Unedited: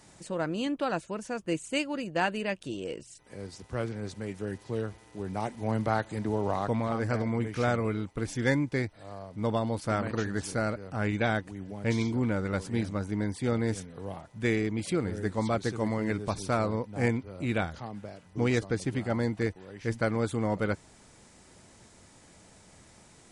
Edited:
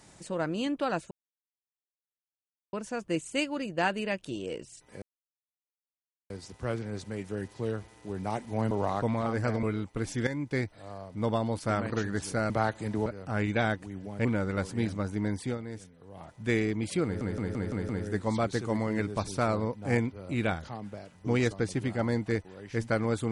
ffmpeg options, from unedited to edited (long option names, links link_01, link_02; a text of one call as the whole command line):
ffmpeg -i in.wav -filter_complex "[0:a]asplit=16[link_01][link_02][link_03][link_04][link_05][link_06][link_07][link_08][link_09][link_10][link_11][link_12][link_13][link_14][link_15][link_16];[link_01]atrim=end=1.11,asetpts=PTS-STARTPTS,afade=type=out:start_time=1.106:duration=0.004:curve=hsin,apad=pad_dur=1.62[link_17];[link_02]atrim=start=1.11:end=3.4,asetpts=PTS-STARTPTS,afade=type=in:duration=0.004:curve=hsin,afade=type=out:start_time=2.286:duration=0.004:curve=hsin,apad=pad_dur=1.28[link_18];[link_03]atrim=start=3.4:end=5.812,asetpts=PTS-STARTPTS,afade=type=in:duration=0.004:curve=hsin[link_19];[link_04]atrim=start=6.368:end=7.292[link_20];[link_05]atrim=start=7.838:end=8.48,asetpts=PTS-STARTPTS,afade=type=out:start_time=0.638:duration=0.004:curve=hsin:silence=0.223872[link_21];[link_06]atrim=start=8.48:end=10.712,asetpts=PTS-STARTPTS,afade=type=in:duration=0.31:silence=0.223872[link_22];[link_07]atrim=start=5.808:end=6.372[link_23];[link_08]atrim=start=10.708:end=11.902[link_24];[link_09]atrim=start=12.208:end=13.54,asetpts=PTS-STARTPTS,afade=type=out:start_time=1.202:duration=0.13:silence=0.281838[link_25];[link_10]atrim=start=13.54:end=14.1,asetpts=PTS-STARTPTS,volume=-11dB[link_26];[link_11]atrim=start=14.1:end=15.172,asetpts=PTS-STARTPTS,afade=type=in:duration=0.13:silence=0.281838[link_27];[link_12]atrim=start=14.998:end=15.172[link_28];[link_13]atrim=start=14.998:end=15.172[link_29];[link_14]atrim=start=14.998:end=15.172[link_30];[link_15]atrim=start=14.998:end=15.172[link_31];[link_16]atrim=start=14.998[link_32];[link_17][link_18][link_19]concat=n=3:v=0:a=1[link_33];[link_33][link_20]acrossfade=duration=0.004:curve1=hsin:curve2=hsin[link_34];[link_21][link_22]concat=n=2:v=0:a=1[link_35];[link_34][link_35]acrossfade=duration=0.004:curve1=hsin:curve2=hsin[link_36];[link_36][link_23]acrossfade=duration=0.004:curve1=hsin:curve2=hsin[link_37];[link_37][link_24]acrossfade=duration=0.004:curve1=hsin:curve2=hsin[link_38];[link_25][link_26][link_27]concat=n=3:v=0:a=1[link_39];[link_38][link_39]acrossfade=duration=0.004:curve1=hsin:curve2=hsin[link_40];[link_40][link_28]acrossfade=duration=0.004:curve1=hsin:curve2=hsin[link_41];[link_41][link_29]acrossfade=duration=0.004:curve1=hsin:curve2=hsin[link_42];[link_42][link_30]acrossfade=duration=0.004:curve1=hsin:curve2=hsin[link_43];[link_43][link_31]acrossfade=duration=0.004:curve1=hsin:curve2=hsin[link_44];[link_44][link_32]acrossfade=duration=0.004:curve1=hsin:curve2=hsin" out.wav